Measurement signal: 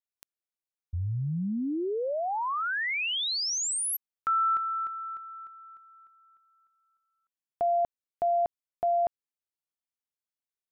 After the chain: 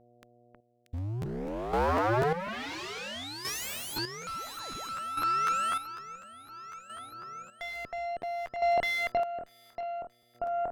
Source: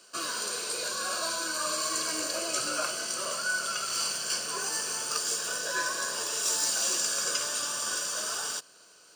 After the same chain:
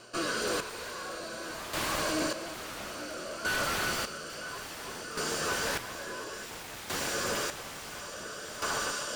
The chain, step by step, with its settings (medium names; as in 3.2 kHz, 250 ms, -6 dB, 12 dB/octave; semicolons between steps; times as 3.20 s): companded quantiser 6-bit; on a send: echo whose repeats swap between lows and highs 317 ms, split 1.8 kHz, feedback 75%, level -3 dB; on the sum: rotary cabinet horn 1 Hz; sine folder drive 18 dB, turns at -14 dBFS; treble shelf 3.2 kHz -10.5 dB; mains buzz 120 Hz, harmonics 6, -53 dBFS 0 dB/octave; Chebyshev shaper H 4 -19 dB, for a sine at -13.5 dBFS; square tremolo 0.58 Hz, depth 65%, duty 35%; treble shelf 6.5 kHz -4.5 dB; crackling interface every 0.25 s, samples 512, repeat, from 0.96 s; trim -8.5 dB